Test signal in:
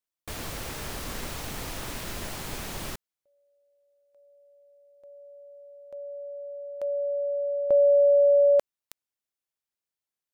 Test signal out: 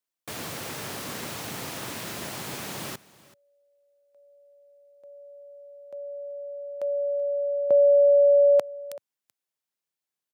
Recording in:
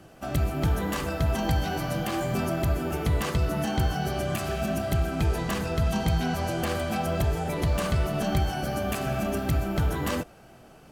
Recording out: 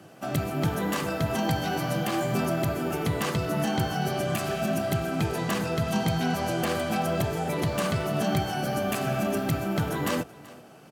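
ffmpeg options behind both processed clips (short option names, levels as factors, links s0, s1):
-filter_complex "[0:a]highpass=f=110:w=0.5412,highpass=f=110:w=1.3066,asplit=2[s0][s1];[s1]aecho=0:1:382:0.0944[s2];[s0][s2]amix=inputs=2:normalize=0,volume=1.19"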